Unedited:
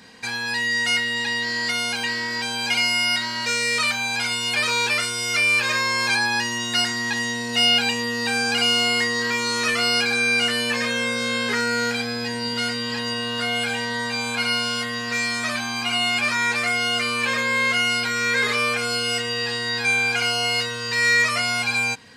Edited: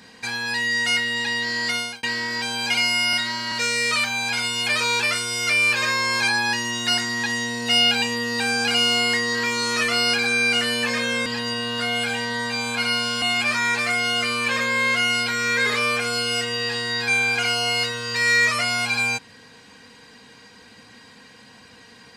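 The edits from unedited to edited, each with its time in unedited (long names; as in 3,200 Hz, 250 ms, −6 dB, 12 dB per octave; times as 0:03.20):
0:01.75–0:02.03: fade out
0:03.13–0:03.39: time-stretch 1.5×
0:11.13–0:12.86: remove
0:14.82–0:15.99: remove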